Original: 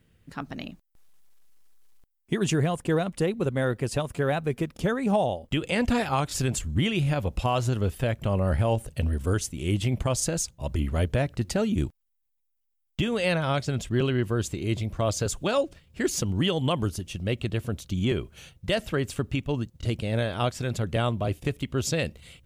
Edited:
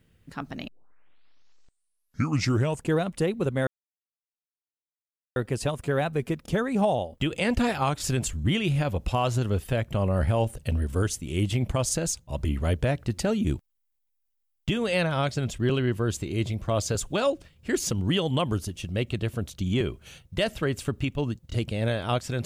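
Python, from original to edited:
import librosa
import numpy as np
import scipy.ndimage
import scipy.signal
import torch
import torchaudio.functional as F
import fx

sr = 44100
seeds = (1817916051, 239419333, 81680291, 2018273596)

y = fx.edit(x, sr, fx.tape_start(start_s=0.68, length_s=2.27),
    fx.insert_silence(at_s=3.67, length_s=1.69), tone=tone)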